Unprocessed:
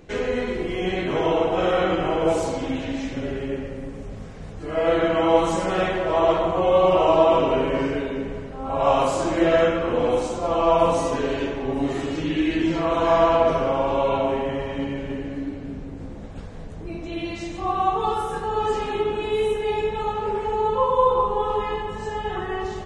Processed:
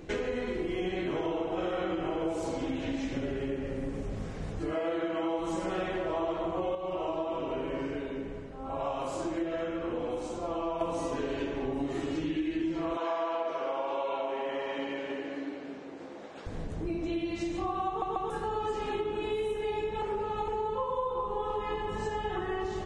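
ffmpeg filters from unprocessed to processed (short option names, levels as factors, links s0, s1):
-filter_complex "[0:a]asettb=1/sr,asplit=3[s0][s1][s2];[s0]atrim=end=4.734[s3];[s1]atrim=start=4.73:end=5.39,asetpts=PTS-STARTPTS,afade=t=in:d=0.004:c=qsin,afade=t=out:st=0.656:d=0.004:c=qsin,highpass=f=220:p=1[s4];[s2]atrim=start=5.386[s5];[s3][s4]acrossfade=d=0.004:c1=hsin:c2=qsin[s6];[s6][s5]acrossfade=d=0.004:c1=qsin:c2=hsin,asettb=1/sr,asplit=3[s7][s8][s9];[s7]atrim=end=12.974[s10];[s8]atrim=start=12.97:end=16.46,asetpts=PTS-STARTPTS,afade=t=in:d=0.004:c=qsin,afade=t=out:st=3.486:d=0.004:c=qsin,highpass=480,lowpass=6400[s11];[s9]atrim=start=16.456[s12];[s10][s11]acrossfade=d=0.004:c1=hsin:c2=qsin[s13];[s13][s12]acrossfade=d=0.004:c1=qsin:c2=hsin,asplit=8[s14][s15][s16][s17][s18][s19][s20][s21];[s14]atrim=end=6.752[s22];[s15]atrim=start=6.748:end=10.812,asetpts=PTS-STARTPTS,volume=0.335[s23];[s16]atrim=start=10.808:end=18.022[s24];[s17]atrim=start=17.878:end=18.022[s25];[s18]atrim=start=17.878:end=18.022[s26];[s19]atrim=start=18.298:end=20.022[s27];[s20]atrim=start=20.018:end=20.482,asetpts=PTS-STARTPTS,areverse[s28];[s21]atrim=start=20.478[s29];[s22][s23]acrossfade=d=0.004:c1=hsin:c2=hsin[s30];[s30][s24]acrossfade=d=0.004:c1=hsin:c2=hsin[s31];[s31][s25]acrossfade=d=0.004:c1=hsin:c2=hsin[s32];[s32][s26]acrossfade=d=0.004:c1=hsin:c2=hsin[s33];[s33][s27]acrossfade=d=0.004:c1=hsin:c2=hsin[s34];[s34][s28]acrossfade=d=0.004:c1=hsin:c2=hsin[s35];[s35][s29]acrossfade=d=0.004:c1=hsin:c2=hsin,equalizer=f=330:t=o:w=0.25:g=7,acompressor=threshold=0.0316:ratio=6"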